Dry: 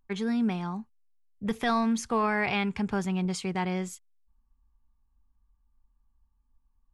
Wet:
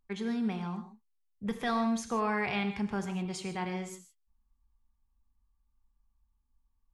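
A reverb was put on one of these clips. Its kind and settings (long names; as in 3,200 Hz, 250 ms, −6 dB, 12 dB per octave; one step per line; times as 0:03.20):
reverb whose tail is shaped and stops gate 180 ms flat, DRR 7 dB
level −5 dB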